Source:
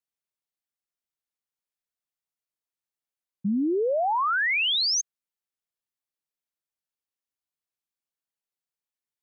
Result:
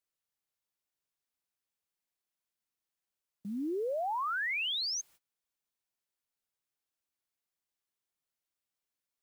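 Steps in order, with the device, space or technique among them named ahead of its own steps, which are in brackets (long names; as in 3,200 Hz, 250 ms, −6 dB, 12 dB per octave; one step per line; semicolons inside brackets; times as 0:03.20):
baby monitor (band-pass filter 460–4,000 Hz; downward compressor 10 to 1, threshold −32 dBFS, peak gain reduction 9 dB; white noise bed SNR 26 dB; noise gate −56 dBFS, range −24 dB)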